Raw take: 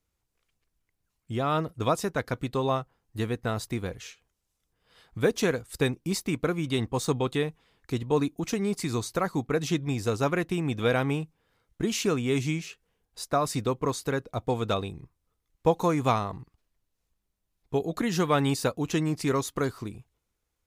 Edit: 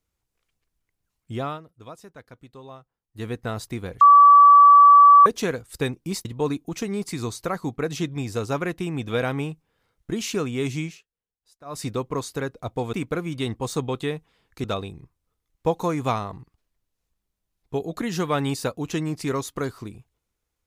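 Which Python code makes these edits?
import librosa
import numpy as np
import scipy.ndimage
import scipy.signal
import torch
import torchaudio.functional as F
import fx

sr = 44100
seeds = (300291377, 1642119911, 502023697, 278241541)

y = fx.edit(x, sr, fx.fade_down_up(start_s=1.43, length_s=1.85, db=-16.0, fade_s=0.16),
    fx.bleep(start_s=4.01, length_s=1.25, hz=1150.0, db=-7.5),
    fx.move(start_s=6.25, length_s=1.71, to_s=14.64),
    fx.fade_down_up(start_s=12.57, length_s=0.96, db=-21.5, fade_s=0.17), tone=tone)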